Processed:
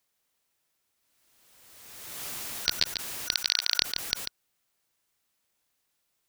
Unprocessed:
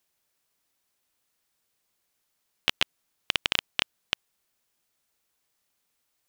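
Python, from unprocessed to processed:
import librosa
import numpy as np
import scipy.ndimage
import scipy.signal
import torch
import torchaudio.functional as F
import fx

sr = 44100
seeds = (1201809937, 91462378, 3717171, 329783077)

y = fx.band_shuffle(x, sr, order='4123')
y = fx.highpass(y, sr, hz=fx.line((3.33, 990.0), (3.8, 400.0)), slope=12, at=(3.33, 3.8), fade=0.02)
y = y + 10.0 ** (-8.0 / 20.0) * np.pad(y, (int(143 * sr / 1000.0), 0))[:len(y)]
y = fx.pre_swell(y, sr, db_per_s=31.0)
y = y * 10.0 ** (-1.0 / 20.0)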